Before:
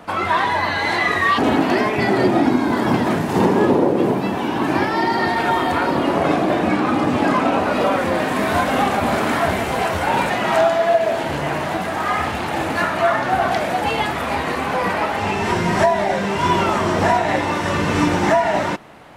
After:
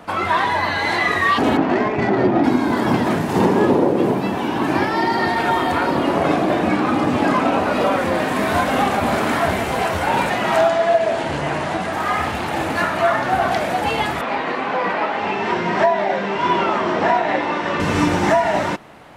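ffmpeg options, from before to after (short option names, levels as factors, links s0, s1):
-filter_complex "[0:a]asettb=1/sr,asplit=3[s0][s1][s2];[s0]atrim=end=1.574[s3];[s1]atrim=start=1.57:end=2.44,asetpts=PTS-STARTPTS,afade=t=in:d=0.004:c=qsin,afade=t=out:st=0.866:d=0.004:c=qsin,adynamicsmooth=sensitivity=0.5:basefreq=1700[s4];[s2]atrim=start=2.436[s5];[s3][s4]acrossfade=d=0.004:c1=hsin:c2=qsin[s6];[s6][s5]acrossfade=d=0.004:c1=qsin:c2=hsin,asettb=1/sr,asplit=3[s7][s8][s9];[s7]atrim=end=10.684[s10];[s8]atrim=start=10.68:end=11.93,asetpts=PTS-STARTPTS,afade=t=in:d=0.004:c=qsin,afade=t=out:st=1.246:d=0.004:c=qsin,lowpass=f=10000:w=0.5412,lowpass=f=10000:w=1.3066[s11];[s9]atrim=start=11.926[s12];[s10][s11]acrossfade=d=0.004:c1=hsin:c2=qsin[s13];[s13][s12]acrossfade=d=0.004:c1=qsin:c2=hsin,asettb=1/sr,asplit=3[s14][s15][s16];[s14]atrim=end=14.214[s17];[s15]atrim=start=14.21:end=17.8,asetpts=PTS-STARTPTS,afade=t=in:d=0.004:c=qsin,afade=t=out:st=3.586:d=0.004:c=qsin,highpass=220,lowpass=3800[s18];[s16]atrim=start=17.796[s19];[s17][s18]acrossfade=d=0.004:c1=hsin:c2=qsin[s20];[s20][s19]acrossfade=d=0.004:c1=qsin:c2=hsin"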